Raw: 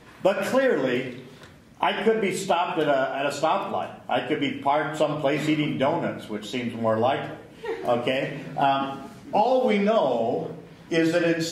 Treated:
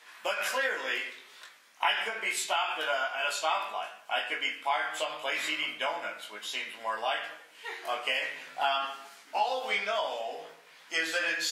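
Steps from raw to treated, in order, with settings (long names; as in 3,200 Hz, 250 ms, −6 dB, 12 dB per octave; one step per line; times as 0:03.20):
high-pass filter 1,300 Hz 12 dB per octave
double-tracking delay 19 ms −4 dB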